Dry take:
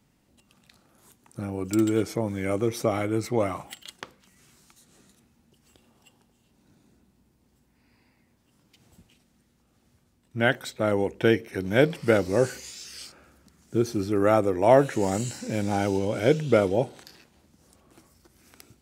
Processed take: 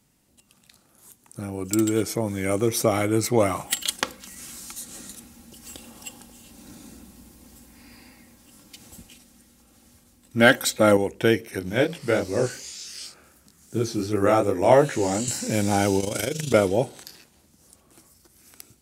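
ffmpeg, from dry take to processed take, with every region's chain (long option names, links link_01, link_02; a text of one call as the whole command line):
ffmpeg -i in.wav -filter_complex "[0:a]asettb=1/sr,asplit=3[link_01][link_02][link_03];[link_01]atrim=end=3.724[link_04];[link_02]atrim=start=3.72:end=10.97,asetpts=PTS-STARTPTS,afade=type=in:duration=0.004:curve=qsin,afade=type=out:start_time=7.246:duration=0.004:curve=qsin,acontrast=51,aecho=1:1:3.7:0.46,atrim=end_sample=319725[link_05];[link_03]atrim=start=10.966[link_06];[link_04][link_05]acrossfade=duration=0.004:curve1=hsin:curve2=qsin[link_07];[link_07][link_06]acrossfade=duration=0.004:curve1=qsin:curve2=hsin,asettb=1/sr,asplit=3[link_08][link_09][link_10];[link_08]atrim=end=11.594[link_11];[link_09]atrim=start=11.59:end=15.28,asetpts=PTS-STARTPTS,afade=type=in:duration=0.004:curve=qsin,afade=type=out:start_time=3.686:duration=0.004:curve=qsin,acrossover=split=7100[link_12][link_13];[link_13]acompressor=threshold=-59dB:ratio=4:attack=1:release=60[link_14];[link_12][link_14]amix=inputs=2:normalize=0,highshelf=frequency=8600:gain=3.5,flanger=delay=18.5:depth=6.5:speed=2.7[link_15];[link_10]atrim=start=15.276[link_16];[link_11][link_15]acrossfade=duration=0.004:curve1=hsin:curve2=qsin[link_17];[link_17][link_16]acrossfade=duration=0.004:curve1=qsin:curve2=hsin,asettb=1/sr,asplit=3[link_18][link_19][link_20];[link_18]atrim=end=16.004[link_21];[link_19]atrim=start=16:end=16.54,asetpts=PTS-STARTPTS,afade=type=in:duration=0.004:curve=qsin,afade=type=out:start_time=0.536:duration=0.004:curve=qsin,highshelf=frequency=3100:gain=11,acompressor=threshold=-23dB:ratio=5:attack=3.2:release=140:knee=1:detection=peak,tremolo=f=25:d=0.71[link_22];[link_20]atrim=start=16.536[link_23];[link_21][link_22]acrossfade=duration=0.004:curve1=hsin:curve2=qsin[link_24];[link_24][link_23]acrossfade=duration=0.004:curve1=qsin:curve2=hsin,equalizer=frequency=11000:width_type=o:width=1.8:gain=10.5,dynaudnorm=framelen=310:gausssize=17:maxgain=12dB,volume=-1dB" out.wav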